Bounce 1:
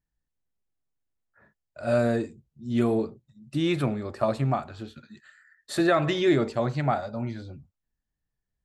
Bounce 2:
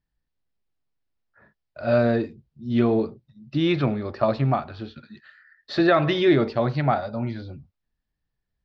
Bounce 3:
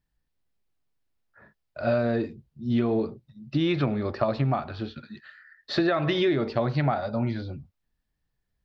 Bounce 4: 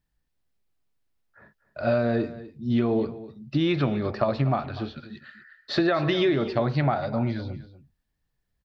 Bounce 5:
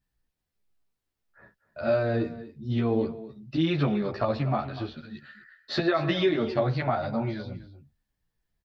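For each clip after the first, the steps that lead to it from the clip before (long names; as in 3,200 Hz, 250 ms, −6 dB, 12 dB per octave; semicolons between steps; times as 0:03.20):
Butterworth low-pass 5,300 Hz 48 dB per octave; level +3.5 dB
downward compressor 12 to 1, threshold −22 dBFS, peak gain reduction 9.5 dB; level +2 dB
single-tap delay 246 ms −16 dB; level +1 dB
barber-pole flanger 11.8 ms −1.5 Hz; level +1.5 dB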